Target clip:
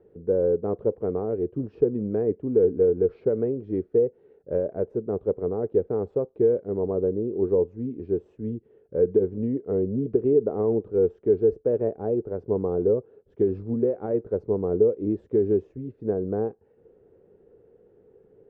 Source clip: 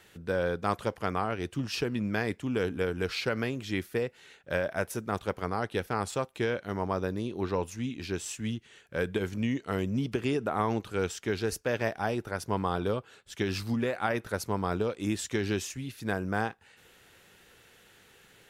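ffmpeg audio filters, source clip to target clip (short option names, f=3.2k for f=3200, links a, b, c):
-af "lowpass=f=440:t=q:w=4.5"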